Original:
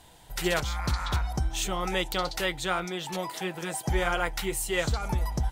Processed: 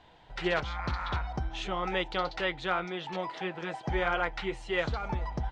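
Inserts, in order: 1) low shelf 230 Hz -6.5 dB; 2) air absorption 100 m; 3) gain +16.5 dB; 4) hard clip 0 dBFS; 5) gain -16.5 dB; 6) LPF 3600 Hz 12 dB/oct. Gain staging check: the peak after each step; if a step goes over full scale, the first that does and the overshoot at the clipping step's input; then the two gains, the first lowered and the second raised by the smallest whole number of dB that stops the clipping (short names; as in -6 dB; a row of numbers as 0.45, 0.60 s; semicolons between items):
-12.5, -13.5, +3.0, 0.0, -16.5, -16.0 dBFS; step 3, 3.0 dB; step 3 +13.5 dB, step 5 -13.5 dB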